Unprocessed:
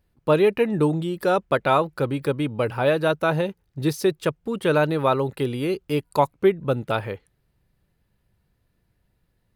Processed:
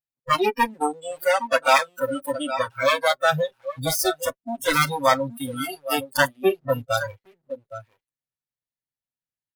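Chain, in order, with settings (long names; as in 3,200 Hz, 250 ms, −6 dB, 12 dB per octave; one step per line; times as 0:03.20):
lower of the sound and its delayed copy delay 7.5 ms
notch filter 410 Hz, Q 12
leveller curve on the samples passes 1
0:00.66–0:03.22: low-shelf EQ 110 Hz −10.5 dB
single-tap delay 816 ms −8.5 dB
noise reduction from a noise print of the clip's start 28 dB
spectral tilt +2.5 dB per octave
level +2.5 dB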